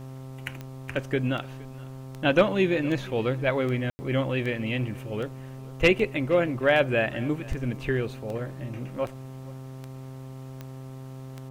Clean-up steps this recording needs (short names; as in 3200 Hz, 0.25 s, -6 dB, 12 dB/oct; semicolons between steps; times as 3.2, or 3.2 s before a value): de-click; de-hum 131.6 Hz, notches 10; room tone fill 3.9–3.99; inverse comb 0.468 s -22.5 dB